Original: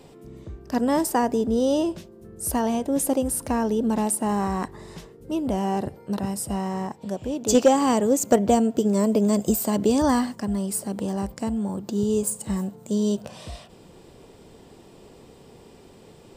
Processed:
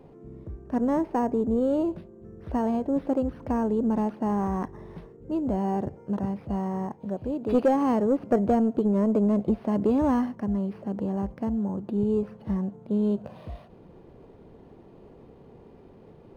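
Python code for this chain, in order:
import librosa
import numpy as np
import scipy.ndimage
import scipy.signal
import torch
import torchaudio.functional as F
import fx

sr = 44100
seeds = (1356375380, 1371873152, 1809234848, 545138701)

y = 10.0 ** (-12.5 / 20.0) * np.tanh(x / 10.0 ** (-12.5 / 20.0))
y = fx.spacing_loss(y, sr, db_at_10k=fx.steps((0.0, 40.0), (1.86, 33.0)))
y = np.interp(np.arange(len(y)), np.arange(len(y))[::6], y[::6])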